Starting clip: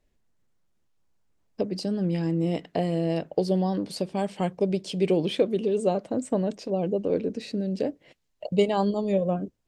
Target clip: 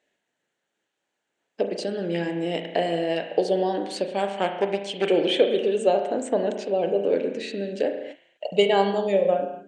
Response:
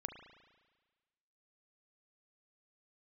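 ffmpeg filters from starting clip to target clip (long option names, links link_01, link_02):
-filter_complex "[0:a]asettb=1/sr,asplit=3[link_01][link_02][link_03];[link_01]atrim=end=4.204[link_04];[link_02]atrim=start=4.2:end=5.05,asetpts=PTS-STARTPTS,afade=type=in:duration=0.004:curve=qsin,afade=type=out:start_time=0.846:duration=0.004:curve=qsin,aeval=exprs='0.282*(cos(1*acos(clip(val(0)/0.282,-1,1)))-cos(1*PI/2))+0.0316*(cos(3*acos(clip(val(0)/0.282,-1,1)))-cos(3*PI/2))+0.0447*(cos(6*acos(clip(val(0)/0.282,-1,1)))-cos(6*PI/2))+0.0251*(cos(8*acos(clip(val(0)/0.282,-1,1)))-cos(8*PI/2))':channel_layout=same[link_05];[link_03]atrim=start=5.046[link_06];[link_04][link_05]acrossfade=duration=0.004:curve1=hsin:curve2=qsin[link_07];[link_07][link_06]acrossfade=duration=0.004:curve1=qsin:curve2=hsin,highpass=410,equalizer=frequency=1100:width_type=q:width=4:gain=-8,equalizer=frequency=1700:width_type=q:width=4:gain=6,equalizer=frequency=3000:width_type=q:width=4:gain=4,equalizer=frequency=5100:width_type=q:width=4:gain=-9,lowpass=frequency=8300:width=0.5412,lowpass=frequency=8300:width=1.3066[link_08];[1:a]atrim=start_sample=2205,afade=type=out:start_time=0.32:duration=0.01,atrim=end_sample=14553[link_09];[link_08][link_09]afir=irnorm=-1:irlink=0,volume=9dB"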